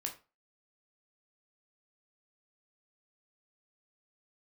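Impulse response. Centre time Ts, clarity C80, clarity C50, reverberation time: 14 ms, 17.5 dB, 12.0 dB, 0.30 s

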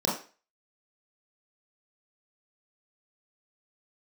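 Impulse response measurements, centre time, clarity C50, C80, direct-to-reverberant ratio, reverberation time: 37 ms, 5.5 dB, 11.0 dB, -5.5 dB, 0.35 s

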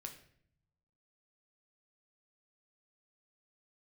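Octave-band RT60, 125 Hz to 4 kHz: 1.3, 1.1, 0.70, 0.55, 0.60, 0.50 s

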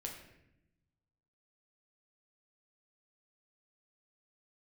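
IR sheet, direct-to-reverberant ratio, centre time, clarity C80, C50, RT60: 0.0 dB, 33 ms, 8.0 dB, 5.5 dB, 0.85 s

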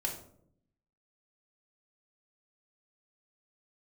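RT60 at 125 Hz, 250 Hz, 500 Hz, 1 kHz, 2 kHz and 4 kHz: 1.1, 1.0, 0.80, 0.55, 0.40, 0.35 s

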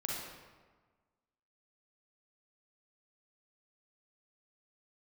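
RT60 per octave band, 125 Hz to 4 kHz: 1.5, 1.5, 1.4, 1.4, 1.2, 0.90 s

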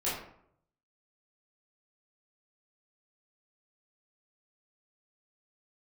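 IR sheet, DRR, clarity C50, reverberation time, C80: -10.0 dB, 2.5 dB, 0.70 s, 6.5 dB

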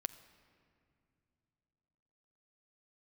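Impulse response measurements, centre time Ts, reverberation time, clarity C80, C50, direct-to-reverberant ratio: 8 ms, not exponential, 15.0 dB, 14.0 dB, 13.0 dB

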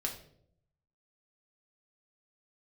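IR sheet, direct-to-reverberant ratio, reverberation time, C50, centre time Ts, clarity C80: 0.0 dB, 0.65 s, 9.0 dB, 19 ms, 12.5 dB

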